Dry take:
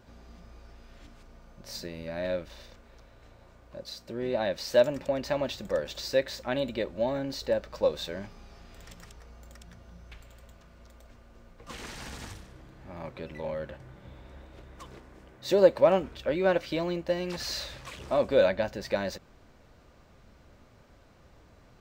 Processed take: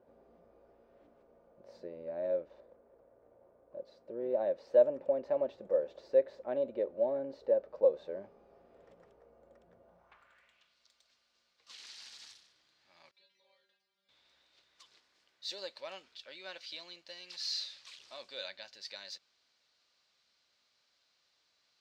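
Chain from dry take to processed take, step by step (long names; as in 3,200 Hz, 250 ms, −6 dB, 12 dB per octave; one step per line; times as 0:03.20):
0:02.60–0:03.81: running median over 15 samples
band-pass filter sweep 510 Hz → 4,400 Hz, 0:09.81–0:10.78
0:13.11–0:14.09: stiff-string resonator 190 Hz, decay 0.31 s, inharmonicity 0.002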